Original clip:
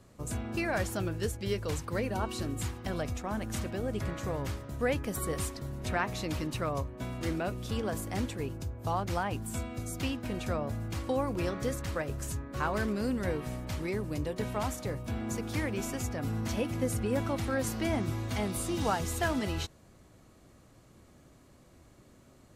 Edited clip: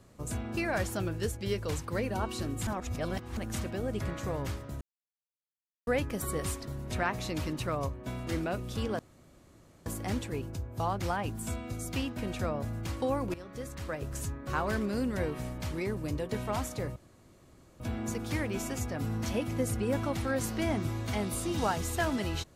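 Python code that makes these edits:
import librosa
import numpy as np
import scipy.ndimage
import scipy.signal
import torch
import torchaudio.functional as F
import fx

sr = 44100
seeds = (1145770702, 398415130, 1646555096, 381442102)

y = fx.edit(x, sr, fx.reverse_span(start_s=2.67, length_s=0.7),
    fx.insert_silence(at_s=4.81, length_s=1.06),
    fx.insert_room_tone(at_s=7.93, length_s=0.87),
    fx.fade_in_from(start_s=11.41, length_s=0.86, floor_db=-16.5),
    fx.insert_room_tone(at_s=15.03, length_s=0.84), tone=tone)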